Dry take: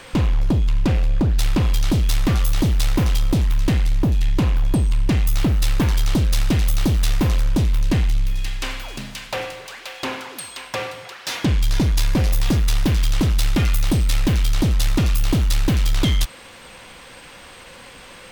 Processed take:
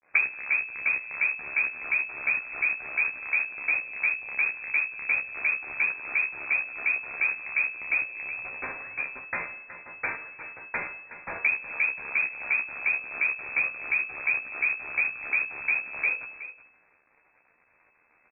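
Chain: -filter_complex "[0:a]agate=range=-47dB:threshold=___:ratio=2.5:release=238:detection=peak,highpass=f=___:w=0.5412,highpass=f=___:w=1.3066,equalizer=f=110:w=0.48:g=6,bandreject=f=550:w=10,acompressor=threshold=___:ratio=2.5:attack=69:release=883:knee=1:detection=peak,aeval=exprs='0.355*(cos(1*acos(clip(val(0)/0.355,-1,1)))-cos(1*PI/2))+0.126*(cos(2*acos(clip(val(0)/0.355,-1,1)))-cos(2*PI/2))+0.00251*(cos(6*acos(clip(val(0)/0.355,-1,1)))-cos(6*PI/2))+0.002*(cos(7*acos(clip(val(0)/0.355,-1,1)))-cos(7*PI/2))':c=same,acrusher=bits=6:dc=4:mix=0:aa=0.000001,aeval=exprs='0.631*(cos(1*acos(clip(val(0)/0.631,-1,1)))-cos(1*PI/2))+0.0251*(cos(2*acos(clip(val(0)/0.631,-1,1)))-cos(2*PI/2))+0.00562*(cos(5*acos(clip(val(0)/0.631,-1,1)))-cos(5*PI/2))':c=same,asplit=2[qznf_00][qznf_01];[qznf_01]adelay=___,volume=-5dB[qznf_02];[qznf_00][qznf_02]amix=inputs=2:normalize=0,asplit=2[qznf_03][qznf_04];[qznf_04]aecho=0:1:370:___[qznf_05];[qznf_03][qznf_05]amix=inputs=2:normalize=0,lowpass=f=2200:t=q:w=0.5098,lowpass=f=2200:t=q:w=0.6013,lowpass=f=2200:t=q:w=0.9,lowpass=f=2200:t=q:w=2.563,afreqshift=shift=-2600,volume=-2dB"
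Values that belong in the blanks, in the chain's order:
-27dB, 83, 83, -31dB, 14, 0.2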